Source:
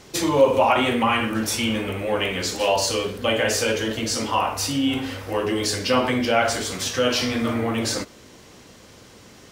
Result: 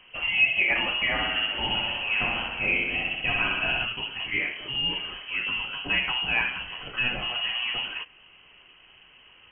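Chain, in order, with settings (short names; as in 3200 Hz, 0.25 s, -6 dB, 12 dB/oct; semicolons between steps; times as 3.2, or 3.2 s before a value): 1.12–3.85 flutter echo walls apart 10.9 m, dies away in 1.2 s; inverted band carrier 3100 Hz; gain -6 dB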